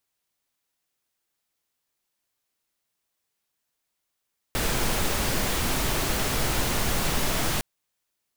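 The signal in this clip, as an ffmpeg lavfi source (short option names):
-f lavfi -i "anoisesrc=c=pink:a=0.288:d=3.06:r=44100:seed=1"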